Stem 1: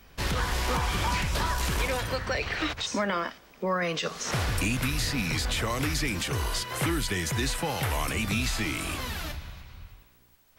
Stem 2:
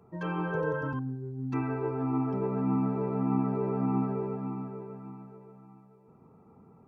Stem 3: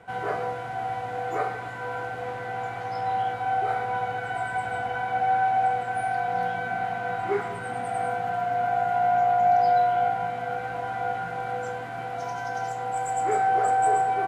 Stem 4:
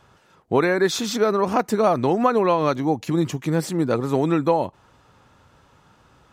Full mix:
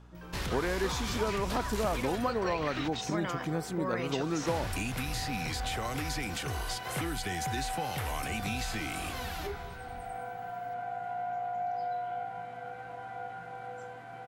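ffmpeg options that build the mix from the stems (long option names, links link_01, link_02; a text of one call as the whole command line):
ffmpeg -i stem1.wav -i stem2.wav -i stem3.wav -i stem4.wav -filter_complex "[0:a]adelay=150,volume=-3.5dB[link_01];[1:a]acompressor=threshold=-33dB:ratio=6,volume=-11dB[link_02];[2:a]adelay=2150,volume=-11.5dB[link_03];[3:a]aeval=exprs='val(0)+0.00562*(sin(2*PI*60*n/s)+sin(2*PI*2*60*n/s)/2+sin(2*PI*3*60*n/s)/3+sin(2*PI*4*60*n/s)/4+sin(2*PI*5*60*n/s)/5)':channel_layout=same,volume=-7.5dB[link_04];[link_01][link_02][link_03][link_04]amix=inputs=4:normalize=0,acompressor=threshold=-36dB:ratio=1.5" out.wav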